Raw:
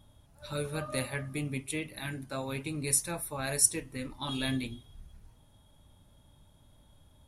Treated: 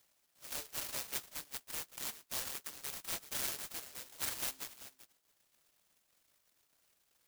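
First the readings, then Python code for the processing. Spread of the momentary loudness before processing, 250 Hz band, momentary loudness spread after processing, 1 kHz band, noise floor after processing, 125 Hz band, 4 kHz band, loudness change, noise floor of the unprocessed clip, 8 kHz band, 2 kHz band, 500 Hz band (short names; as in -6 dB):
14 LU, -22.0 dB, 9 LU, -8.5 dB, -77 dBFS, -23.5 dB, -4.0 dB, -7.5 dB, -61 dBFS, -10.0 dB, -8.5 dB, -16.0 dB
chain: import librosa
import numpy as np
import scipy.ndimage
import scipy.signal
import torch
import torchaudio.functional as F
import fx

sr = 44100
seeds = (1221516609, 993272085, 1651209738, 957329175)

p1 = fx.dereverb_blind(x, sr, rt60_s=0.73)
p2 = scipy.signal.sosfilt(scipy.signal.butter(4, 740.0, 'highpass', fs=sr, output='sos'), p1)
p3 = fx.dynamic_eq(p2, sr, hz=970.0, q=2.8, threshold_db=-56.0, ratio=4.0, max_db=5)
p4 = np.clip(10.0 ** (27.5 / 20.0) * p3, -1.0, 1.0) / 10.0 ** (27.5 / 20.0)
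p5 = fx.air_absorb(p4, sr, metres=130.0)
p6 = p5 + fx.echo_single(p5, sr, ms=386, db=-14.0, dry=0)
p7 = fx.noise_mod_delay(p6, sr, seeds[0], noise_hz=5700.0, depth_ms=0.43)
y = F.gain(torch.from_numpy(p7), 1.0).numpy()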